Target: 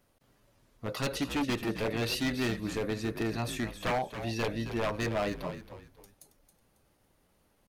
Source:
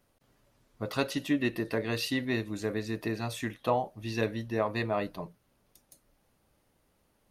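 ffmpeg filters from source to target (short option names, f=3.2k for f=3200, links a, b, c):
-filter_complex "[0:a]aeval=exprs='0.0562*(abs(mod(val(0)/0.0562+3,4)-2)-1)':c=same,asplit=4[a][b][c][d];[b]adelay=259,afreqshift=-69,volume=-10.5dB[e];[c]adelay=518,afreqshift=-138,volume=-20.7dB[f];[d]adelay=777,afreqshift=-207,volume=-30.8dB[g];[a][e][f][g]amix=inputs=4:normalize=0,atempo=0.95,volume=1dB"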